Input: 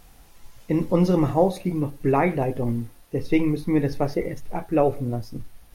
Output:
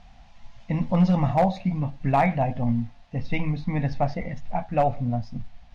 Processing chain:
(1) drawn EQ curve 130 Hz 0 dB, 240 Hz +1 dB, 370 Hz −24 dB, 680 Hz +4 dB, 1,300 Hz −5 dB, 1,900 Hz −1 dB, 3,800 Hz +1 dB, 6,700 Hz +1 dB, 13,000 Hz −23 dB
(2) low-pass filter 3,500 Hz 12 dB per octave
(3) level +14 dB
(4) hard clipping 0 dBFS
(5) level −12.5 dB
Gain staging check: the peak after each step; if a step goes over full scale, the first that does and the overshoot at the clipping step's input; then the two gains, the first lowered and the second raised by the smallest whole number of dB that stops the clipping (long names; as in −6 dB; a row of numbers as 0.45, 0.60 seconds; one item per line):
−9.5, −9.5, +4.5, 0.0, −12.5 dBFS
step 3, 4.5 dB
step 3 +9 dB, step 5 −7.5 dB